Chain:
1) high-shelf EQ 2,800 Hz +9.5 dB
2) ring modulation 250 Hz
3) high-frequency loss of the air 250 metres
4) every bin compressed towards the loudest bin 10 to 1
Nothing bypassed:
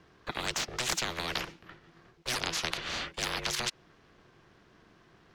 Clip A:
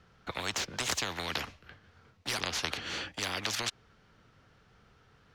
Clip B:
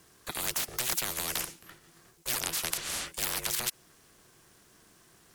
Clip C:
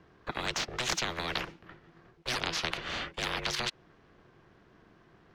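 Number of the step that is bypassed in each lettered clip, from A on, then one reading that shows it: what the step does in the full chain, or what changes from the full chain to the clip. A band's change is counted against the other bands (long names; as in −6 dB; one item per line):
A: 2, change in momentary loudness spread −3 LU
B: 3, 8 kHz band +8.5 dB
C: 1, 8 kHz band −4.5 dB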